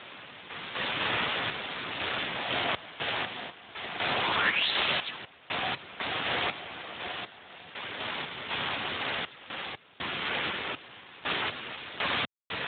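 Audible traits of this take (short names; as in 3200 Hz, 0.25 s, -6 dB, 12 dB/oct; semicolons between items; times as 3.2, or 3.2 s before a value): a quantiser's noise floor 6-bit, dither triangular; random-step tremolo 4 Hz, depth 100%; Speex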